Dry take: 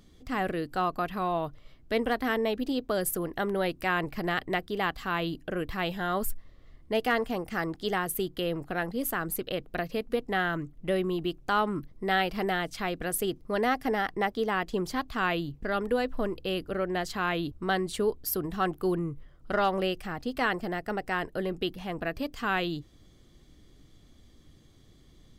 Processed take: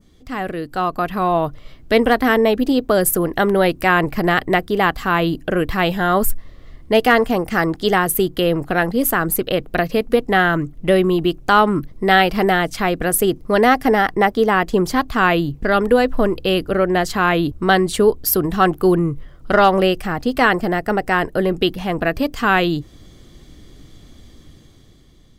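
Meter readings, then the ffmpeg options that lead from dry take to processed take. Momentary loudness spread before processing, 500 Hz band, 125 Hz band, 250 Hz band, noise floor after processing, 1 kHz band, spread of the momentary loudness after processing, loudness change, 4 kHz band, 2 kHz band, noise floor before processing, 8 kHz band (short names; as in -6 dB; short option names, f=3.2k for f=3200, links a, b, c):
6 LU, +13.5 dB, +13.0 dB, +13.0 dB, -46 dBFS, +13.0 dB, 6 LU, +13.0 dB, +11.5 dB, +12.5 dB, -57 dBFS, +13.0 dB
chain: -af "adynamicequalizer=threshold=0.00398:dfrequency=3700:dqfactor=0.9:tfrequency=3700:tqfactor=0.9:attack=5:release=100:ratio=0.375:range=2.5:mode=cutabove:tftype=bell,dynaudnorm=f=230:g=9:m=9dB,volume=4.5dB"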